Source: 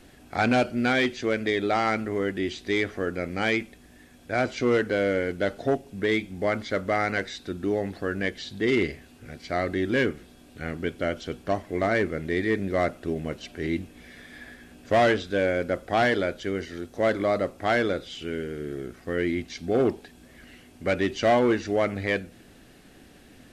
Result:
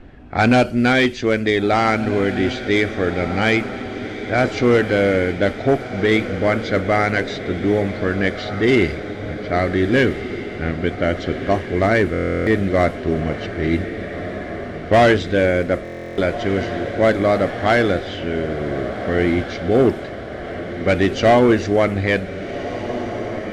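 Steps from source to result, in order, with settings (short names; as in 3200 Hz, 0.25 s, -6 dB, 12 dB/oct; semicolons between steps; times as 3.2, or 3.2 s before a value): low-pass opened by the level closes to 1900 Hz, open at -20 dBFS; low shelf 110 Hz +9 dB; diffused feedback echo 1.601 s, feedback 61%, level -11 dB; stuck buffer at 12.12/15.83, samples 1024, times 14; gain +7 dB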